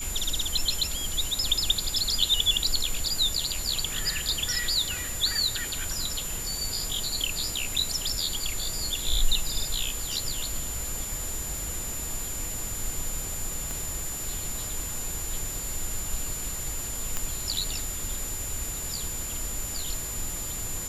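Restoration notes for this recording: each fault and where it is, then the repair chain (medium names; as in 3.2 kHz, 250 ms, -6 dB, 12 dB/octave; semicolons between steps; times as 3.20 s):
whine 7.1 kHz -34 dBFS
13.71 s: pop -19 dBFS
17.17 s: pop -12 dBFS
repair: de-click; band-stop 7.1 kHz, Q 30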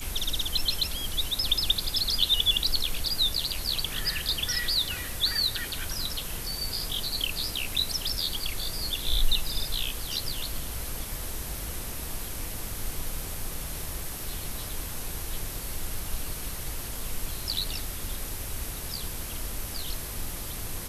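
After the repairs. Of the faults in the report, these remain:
13.71 s: pop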